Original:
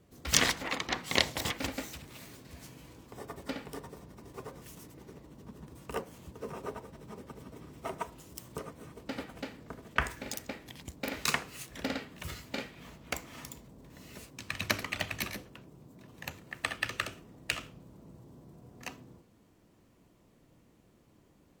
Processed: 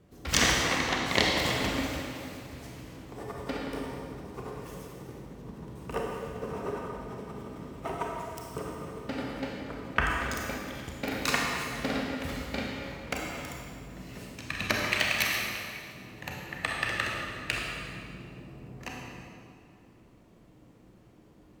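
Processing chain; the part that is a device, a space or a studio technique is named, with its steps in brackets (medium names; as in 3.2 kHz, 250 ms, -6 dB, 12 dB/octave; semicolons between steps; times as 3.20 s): 14.85–15.95 s: tilt shelf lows -8 dB, about 820 Hz; swimming-pool hall (reverberation RT60 2.3 s, pre-delay 28 ms, DRR -2 dB; treble shelf 4.4 kHz -7 dB); trim +2.5 dB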